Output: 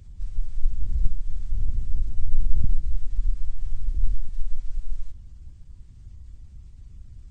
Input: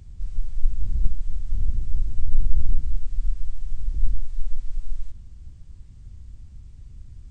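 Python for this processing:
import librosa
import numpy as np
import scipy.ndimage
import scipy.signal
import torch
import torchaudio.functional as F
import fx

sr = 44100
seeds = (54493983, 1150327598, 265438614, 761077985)

y = fx.spec_quant(x, sr, step_db=15)
y = fx.band_squash(y, sr, depth_pct=40, at=(2.64, 4.29))
y = y * 10.0 ** (-1.5 / 20.0)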